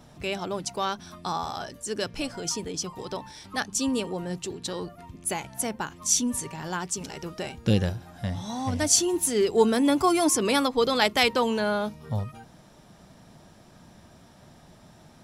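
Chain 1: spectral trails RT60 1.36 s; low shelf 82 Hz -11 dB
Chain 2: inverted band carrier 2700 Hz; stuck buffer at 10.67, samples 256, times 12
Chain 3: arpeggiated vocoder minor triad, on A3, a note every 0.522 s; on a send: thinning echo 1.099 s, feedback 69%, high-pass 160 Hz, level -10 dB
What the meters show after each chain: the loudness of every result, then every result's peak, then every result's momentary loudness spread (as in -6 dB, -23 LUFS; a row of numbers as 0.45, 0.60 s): -22.5, -25.5, -29.0 LUFS; -4.0, -8.5, -8.5 dBFS; 14, 15, 17 LU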